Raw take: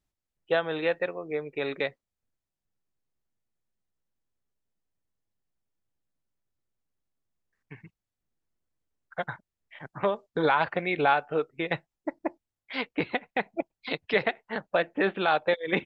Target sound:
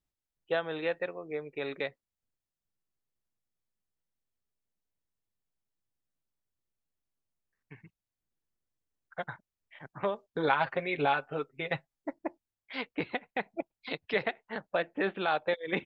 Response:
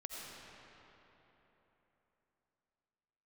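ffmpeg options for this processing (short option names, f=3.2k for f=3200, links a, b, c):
-filter_complex "[0:a]asettb=1/sr,asplit=3[a][b][c];[a]atrim=end=10.474[d];[b]atrim=start=10.47:end=12.13,asetpts=PTS-STARTPTS,afade=t=in:d=0.004:c=qsin,afade=t=out:st=1.656:d=0.004:c=qsin,aecho=1:1:7.5:0.63,atrim=end_sample=73206[e];[c]atrim=start=12.126[f];[d][e]acrossfade=d=0.004:c1=hsin:c2=qsin[g];[g][f]acrossfade=d=0.004:c1=qsin:c2=hsin,volume=-5dB"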